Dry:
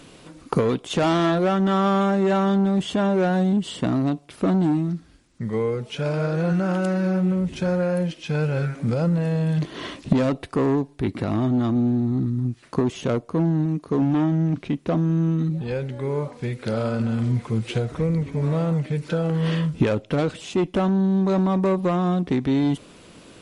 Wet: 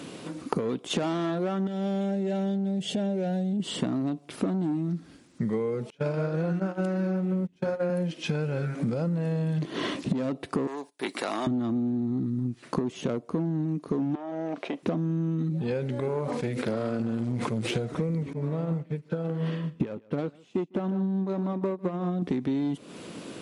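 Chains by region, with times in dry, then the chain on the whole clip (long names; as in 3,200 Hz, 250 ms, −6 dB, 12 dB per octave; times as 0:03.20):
0:01.67–0:03.60: downward compressor 4 to 1, threshold −24 dBFS + phaser with its sweep stopped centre 300 Hz, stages 6
0:05.90–0:07.90: high-shelf EQ 5,100 Hz −4.5 dB + mains-hum notches 60/120/180/240/300/360/420 Hz + noise gate −25 dBFS, range −31 dB
0:10.67–0:11.47: noise gate −43 dBFS, range −21 dB + high-pass filter 700 Hz + high-shelf EQ 5,000 Hz +12 dB
0:14.15–0:14.83: high-pass with resonance 610 Hz, resonance Q 2.3 + high-shelf EQ 5,300 Hz −7 dB + downward compressor 3 to 1, threshold −33 dBFS
0:16.00–0:17.76: tube saturation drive 20 dB, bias 0.8 + level that may fall only so fast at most 42 dB per second
0:18.33–0:22.22: high-shelf EQ 4,700 Hz −8.5 dB + single-tap delay 150 ms −13 dB + expander for the loud parts 2.5 to 1, over −32 dBFS
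whole clip: high-pass filter 200 Hz 12 dB per octave; low-shelf EQ 360 Hz +9 dB; downward compressor 10 to 1, threshold −28 dBFS; level +3 dB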